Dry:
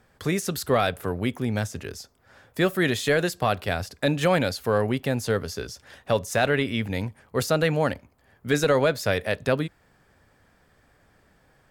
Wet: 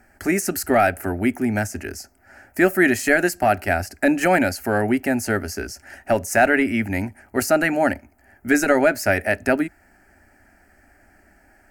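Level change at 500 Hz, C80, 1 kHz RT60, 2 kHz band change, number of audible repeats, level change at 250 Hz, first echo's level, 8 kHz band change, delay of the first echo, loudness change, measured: +3.0 dB, none, none, +7.5 dB, none, +6.5 dB, none, +6.0 dB, none, +4.5 dB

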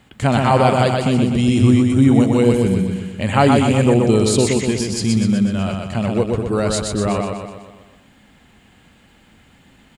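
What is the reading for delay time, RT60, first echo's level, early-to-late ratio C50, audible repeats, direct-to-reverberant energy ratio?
0.124 s, none, -3.5 dB, none, 6, none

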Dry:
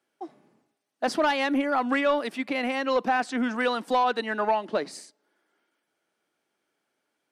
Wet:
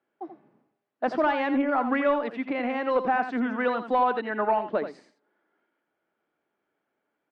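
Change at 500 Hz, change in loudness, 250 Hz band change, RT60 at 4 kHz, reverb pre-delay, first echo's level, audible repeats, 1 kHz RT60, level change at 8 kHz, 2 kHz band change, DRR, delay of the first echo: +0.5 dB, 0.0 dB, +0.5 dB, none, none, -9.5 dB, 1, none, under -20 dB, -2.0 dB, none, 84 ms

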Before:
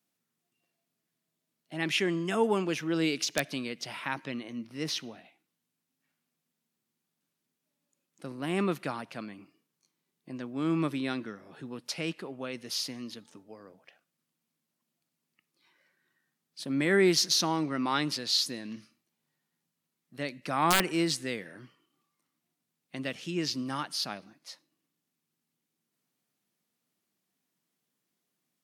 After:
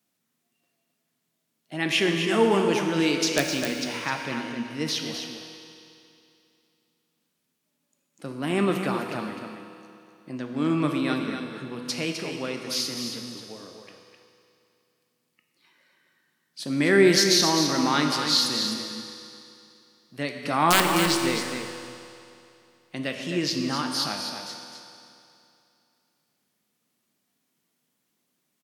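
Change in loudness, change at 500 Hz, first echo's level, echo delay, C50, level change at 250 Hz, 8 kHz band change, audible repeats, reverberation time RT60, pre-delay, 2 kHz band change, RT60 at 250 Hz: +6.0 dB, +6.5 dB, -7.5 dB, 0.257 s, 3.0 dB, +6.0 dB, +6.5 dB, 1, 2.7 s, 12 ms, +6.5 dB, 2.7 s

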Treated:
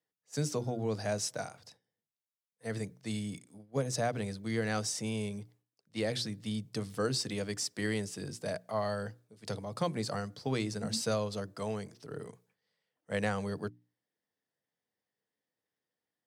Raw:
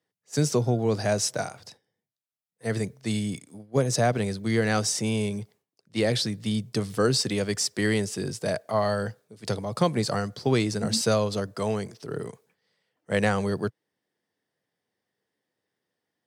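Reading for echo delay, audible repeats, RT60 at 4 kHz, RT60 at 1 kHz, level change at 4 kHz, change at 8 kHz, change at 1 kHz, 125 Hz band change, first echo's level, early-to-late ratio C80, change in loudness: none, none, none, none, -8.5 dB, -8.5 dB, -8.5 dB, -9.5 dB, none, none, -9.0 dB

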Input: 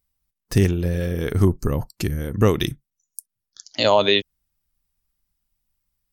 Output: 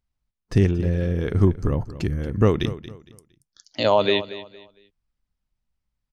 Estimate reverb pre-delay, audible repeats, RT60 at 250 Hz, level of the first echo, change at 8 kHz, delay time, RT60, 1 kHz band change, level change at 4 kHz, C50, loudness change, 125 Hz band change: none, 2, none, -15.0 dB, under -10 dB, 0.23 s, none, -2.0 dB, -5.5 dB, none, -1.0 dB, 0.0 dB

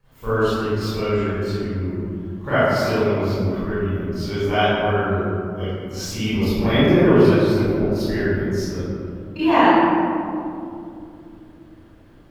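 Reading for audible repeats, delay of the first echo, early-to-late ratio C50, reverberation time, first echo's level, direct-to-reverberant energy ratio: none, none, -9.5 dB, 2.6 s, none, -16.5 dB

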